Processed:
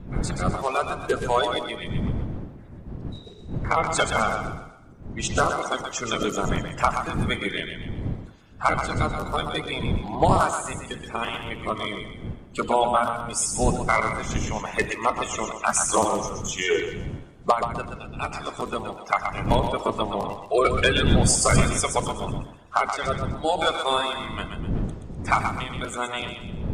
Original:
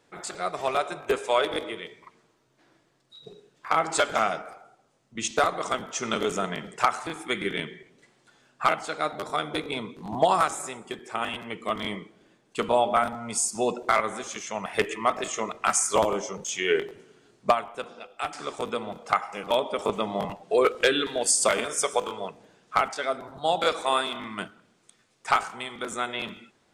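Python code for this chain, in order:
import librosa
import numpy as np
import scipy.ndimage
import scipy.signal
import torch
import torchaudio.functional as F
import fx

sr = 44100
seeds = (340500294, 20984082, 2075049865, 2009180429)

y = fx.spec_quant(x, sr, step_db=30)
y = fx.dmg_wind(y, sr, seeds[0], corner_hz=170.0, level_db=-32.0)
y = fx.echo_thinned(y, sr, ms=126, feedback_pct=39, hz=420.0, wet_db=-6.5)
y = y * librosa.db_to_amplitude(1.5)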